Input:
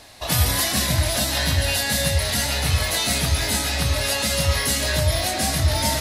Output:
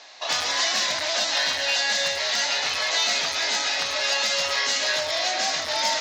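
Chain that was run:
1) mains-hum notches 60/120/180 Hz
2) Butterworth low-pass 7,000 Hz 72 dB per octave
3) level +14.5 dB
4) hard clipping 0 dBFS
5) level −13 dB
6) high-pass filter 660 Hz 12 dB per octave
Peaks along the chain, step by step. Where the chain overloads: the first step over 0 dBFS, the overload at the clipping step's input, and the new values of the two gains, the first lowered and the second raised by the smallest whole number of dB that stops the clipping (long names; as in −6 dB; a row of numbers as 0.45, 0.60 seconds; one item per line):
−7.0, −8.0, +6.5, 0.0, −13.0, −10.5 dBFS
step 3, 6.5 dB
step 3 +7.5 dB, step 5 −6 dB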